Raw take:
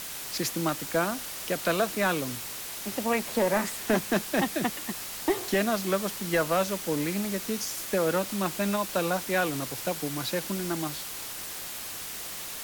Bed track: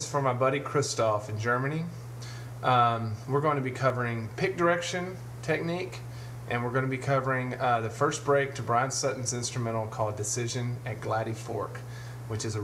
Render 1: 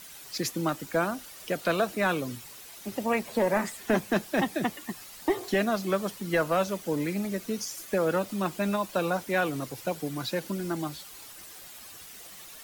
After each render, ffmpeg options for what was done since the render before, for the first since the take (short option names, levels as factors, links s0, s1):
-af "afftdn=nr=11:nf=-38"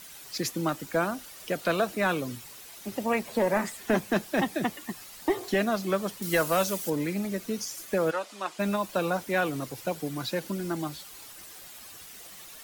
-filter_complex "[0:a]asettb=1/sr,asplit=3[s0][s1][s2];[s0]atrim=end=6.224[s3];[s1]atrim=start=6.22:end=6.9,asetpts=PTS-STARTPTS,afade=t=in:d=0.004:c=qsin,afade=t=out:st=0.676:d=0.004:c=qsin,highshelf=f=4400:g=12[s4];[s2]atrim=start=6.896[s5];[s3][s4]acrossfade=d=0.004:c1=hsin:c2=qsin[s6];[s6][s5]acrossfade=d=0.004:c1=qsin:c2=hsin,asplit=3[s7][s8][s9];[s7]afade=t=out:st=8.1:d=0.02[s10];[s8]highpass=620,lowpass=8000,afade=t=in:st=8.1:d=0.02,afade=t=out:st=8.58:d=0.02[s11];[s9]afade=t=in:st=8.58:d=0.02[s12];[s10][s11][s12]amix=inputs=3:normalize=0"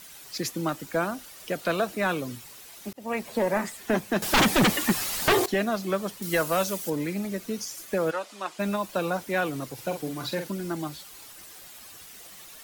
-filter_complex "[0:a]asettb=1/sr,asplit=3[s0][s1][s2];[s0]atrim=end=4.224[s3];[s1]atrim=start=4.22:end=5.46,asetpts=PTS-STARTPTS,afade=t=in:d=0.004:c=qsin,afade=t=out:st=1.236:d=0.004:c=qsin,aeval=exprs='0.168*sin(PI/2*3.98*val(0)/0.168)':c=same[s4];[s2]atrim=start=5.456[s5];[s3][s4]acrossfade=d=0.004:c1=hsin:c2=qsin[s6];[s6][s5]acrossfade=d=0.004:c1=qsin:c2=hsin,asettb=1/sr,asplit=3[s7][s8][s9];[s7]atrim=end=9.744[s10];[s8]atrim=start=9.74:end=10.48,asetpts=PTS-STARTPTS,afade=t=in:d=0.004:c=qsin,afade=t=out:st=0.736:d=0.004:c=qsin,asplit=2[s11][s12];[s12]adelay=46,volume=0.447[s13];[s11][s13]amix=inputs=2:normalize=0,atrim=end_sample=32634[s14];[s9]atrim=start=10.476[s15];[s10][s14]acrossfade=d=0.004:c1=hsin:c2=qsin[s16];[s16][s15]acrossfade=d=0.004:c1=qsin:c2=hsin,asplit=2[s17][s18];[s17]atrim=end=2.93,asetpts=PTS-STARTPTS,afade=t=out:st=2.926:d=0.004:c=hsin[s19];[s18]atrim=start=2.93,asetpts=PTS-STARTPTS,afade=t=in:d=0.41:c=qsin[s20];[s19][s20]concat=n=2:v=0:a=1"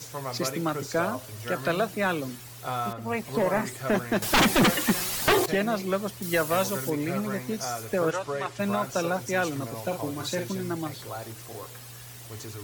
-filter_complex "[1:a]volume=0.398[s0];[0:a][s0]amix=inputs=2:normalize=0"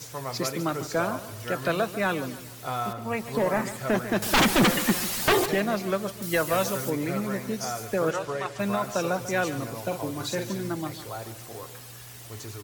-af "aecho=1:1:145|290|435|580:0.2|0.0818|0.0335|0.0138"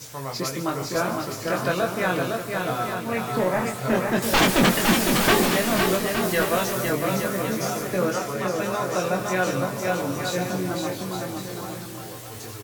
-filter_complex "[0:a]asplit=2[s0][s1];[s1]adelay=22,volume=0.631[s2];[s0][s2]amix=inputs=2:normalize=0,aecho=1:1:510|867|1117|1292|1414:0.631|0.398|0.251|0.158|0.1"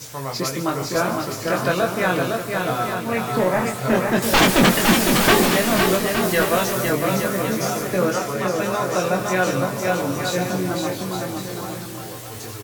-af "volume=1.5"